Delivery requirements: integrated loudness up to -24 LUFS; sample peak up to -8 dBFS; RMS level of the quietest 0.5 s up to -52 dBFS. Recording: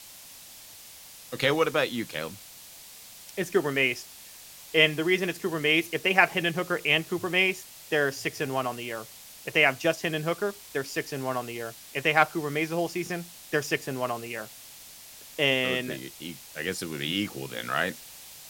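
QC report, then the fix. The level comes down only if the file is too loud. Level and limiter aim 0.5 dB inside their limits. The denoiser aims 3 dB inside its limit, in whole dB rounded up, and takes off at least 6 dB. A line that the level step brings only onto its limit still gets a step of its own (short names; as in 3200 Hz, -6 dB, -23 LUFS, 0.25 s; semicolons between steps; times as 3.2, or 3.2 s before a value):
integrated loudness -27.0 LUFS: OK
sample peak -3.5 dBFS: fail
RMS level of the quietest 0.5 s -48 dBFS: fail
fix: denoiser 7 dB, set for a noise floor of -48 dBFS; limiter -8.5 dBFS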